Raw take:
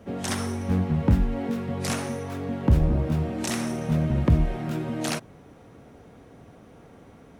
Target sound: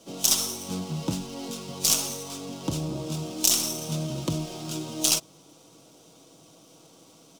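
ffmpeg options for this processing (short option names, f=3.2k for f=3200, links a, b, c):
-filter_complex "[0:a]highpass=200,equalizer=f=210:t=q:w=4:g=-6,equalizer=f=450:t=q:w=4:g=-5,equalizer=f=800:t=q:w=4:g=-3,equalizer=f=1.7k:t=q:w=4:g=-9,equalizer=f=4.3k:t=q:w=4:g=-6,lowpass=f=7.4k:w=0.5412,lowpass=f=7.4k:w=1.3066,aecho=1:1:6.2:0.41,acrossover=split=1700[a][b];[b]aeval=exprs='max(val(0),0)':c=same[c];[a][c]amix=inputs=2:normalize=0,aexciter=amount=13.1:drive=3.2:freq=3k,volume=-2.5dB"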